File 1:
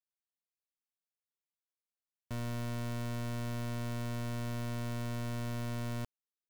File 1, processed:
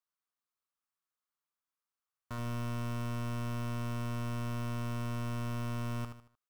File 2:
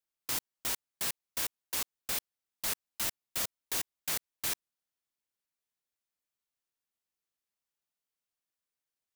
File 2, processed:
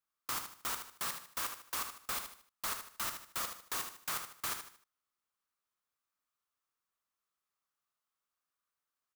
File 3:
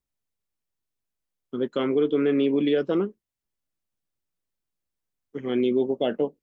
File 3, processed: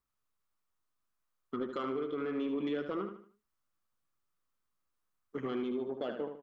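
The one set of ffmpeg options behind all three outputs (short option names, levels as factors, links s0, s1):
-af "equalizer=f=1200:t=o:w=0.67:g=13.5,acompressor=threshold=0.0355:ratio=12,asoftclip=type=tanh:threshold=0.0631,aecho=1:1:76|152|228|304:0.422|0.152|0.0547|0.0197,volume=0.75"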